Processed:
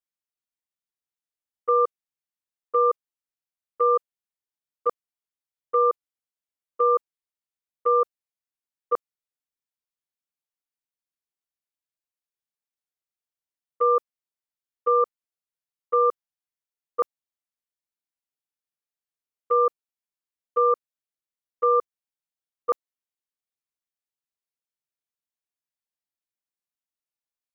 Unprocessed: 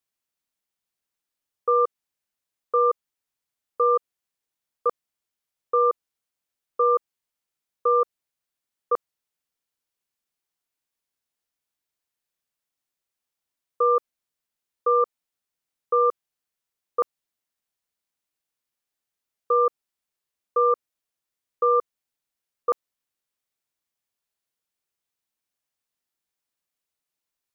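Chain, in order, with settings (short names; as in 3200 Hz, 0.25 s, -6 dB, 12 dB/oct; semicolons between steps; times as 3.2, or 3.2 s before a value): gate -24 dBFS, range -11 dB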